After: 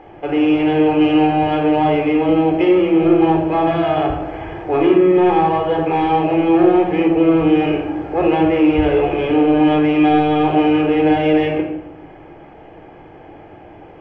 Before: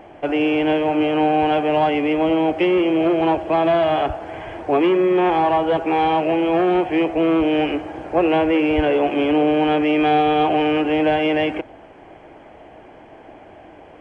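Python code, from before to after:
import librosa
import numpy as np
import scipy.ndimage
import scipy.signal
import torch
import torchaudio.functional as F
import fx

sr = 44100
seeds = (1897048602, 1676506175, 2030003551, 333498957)

p1 = fx.peak_eq(x, sr, hz=2800.0, db=9.0, octaves=0.24, at=(0.81, 1.31))
p2 = 10.0 ** (-17.5 / 20.0) * np.tanh(p1 / 10.0 ** (-17.5 / 20.0))
p3 = p1 + (p2 * 10.0 ** (-8.5 / 20.0))
p4 = fx.air_absorb(p3, sr, metres=120.0)
p5 = fx.room_shoebox(p4, sr, seeds[0], volume_m3=2300.0, walls='furnished', distance_m=4.0)
y = p5 * 10.0 ** (-4.0 / 20.0)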